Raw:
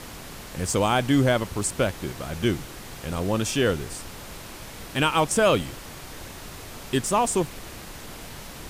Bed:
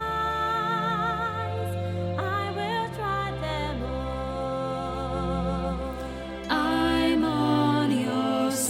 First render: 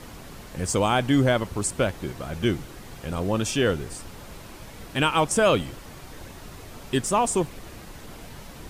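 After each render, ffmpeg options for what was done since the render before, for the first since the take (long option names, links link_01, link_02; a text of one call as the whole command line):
ffmpeg -i in.wav -af "afftdn=noise_reduction=6:noise_floor=-41" out.wav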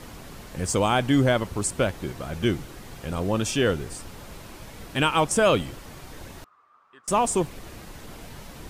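ffmpeg -i in.wav -filter_complex "[0:a]asettb=1/sr,asplit=3[link_01][link_02][link_03];[link_01]atrim=end=6.444[link_04];[link_02]atrim=start=6.44:end=7.08,asetpts=PTS-STARTPTS,afade=type=in:duration=0.004:curve=qsin,afade=type=out:start_time=0.636:duration=0.004:curve=qsin,bandpass=frequency=1200:width_type=q:width=12[link_05];[link_03]atrim=start=7.076[link_06];[link_04][link_05]acrossfade=duration=0.004:curve1=hsin:curve2=qsin[link_07];[link_07][link_06]acrossfade=duration=0.004:curve1=qsin:curve2=hsin" out.wav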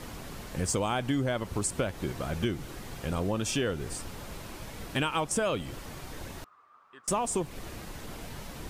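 ffmpeg -i in.wav -af "acompressor=threshold=-26dB:ratio=5" out.wav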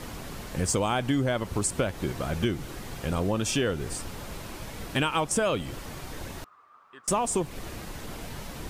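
ffmpeg -i in.wav -af "volume=3dB" out.wav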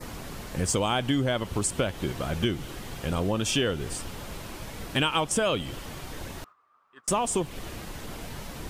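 ffmpeg -i in.wav -af "agate=range=-9dB:threshold=-47dB:ratio=16:detection=peak,adynamicequalizer=threshold=0.00398:dfrequency=3100:dqfactor=3.4:tfrequency=3100:tqfactor=3.4:attack=5:release=100:ratio=0.375:range=3:mode=boostabove:tftype=bell" out.wav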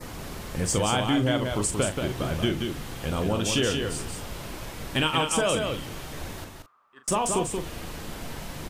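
ffmpeg -i in.wav -filter_complex "[0:a]asplit=2[link_01][link_02];[link_02]adelay=39,volume=-9dB[link_03];[link_01][link_03]amix=inputs=2:normalize=0,asplit=2[link_04][link_05];[link_05]aecho=0:1:180:0.562[link_06];[link_04][link_06]amix=inputs=2:normalize=0" out.wav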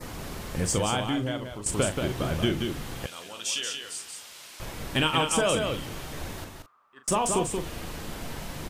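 ffmpeg -i in.wav -filter_complex "[0:a]asettb=1/sr,asplit=3[link_01][link_02][link_03];[link_01]atrim=end=3.064[link_04];[link_02]atrim=start=3.06:end=4.6,asetpts=PTS-STARTPTS,afade=type=in:duration=0.004:curve=qsin,afade=type=out:start_time=1.536:duration=0.004:curve=qsin,bandpass=frequency=6200:width_type=q:width=0.55[link_05];[link_03]atrim=start=4.596[link_06];[link_04][link_05]acrossfade=duration=0.004:curve1=hsin:curve2=qsin[link_07];[link_07][link_06]acrossfade=duration=0.004:curve1=qsin:curve2=hsin,asplit=2[link_08][link_09];[link_08]atrim=end=1.66,asetpts=PTS-STARTPTS,afade=type=out:start_time=0.59:duration=1.07:silence=0.211349[link_10];[link_09]atrim=start=1.66,asetpts=PTS-STARTPTS,afade=type=in:duration=0.004:curve=hsin:silence=0.211349[link_11];[link_10][link_11]concat=n=2:v=0:a=1" out.wav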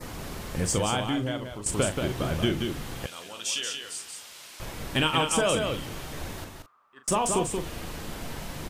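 ffmpeg -i in.wav -af anull out.wav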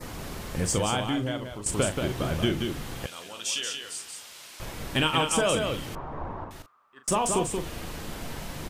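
ffmpeg -i in.wav -filter_complex "[0:a]asettb=1/sr,asplit=3[link_01][link_02][link_03];[link_01]atrim=end=5.954[link_04];[link_02]atrim=start=5.95:end=6.51,asetpts=PTS-STARTPTS,afade=type=in:duration=0.004:curve=qsin,afade=type=out:start_time=0.556:duration=0.004:curve=qsin,lowpass=frequency=1000:width_type=q:width=3[link_05];[link_03]atrim=start=6.506[link_06];[link_04][link_05]acrossfade=duration=0.004:curve1=hsin:curve2=qsin[link_07];[link_07][link_06]acrossfade=duration=0.004:curve1=qsin:curve2=hsin" out.wav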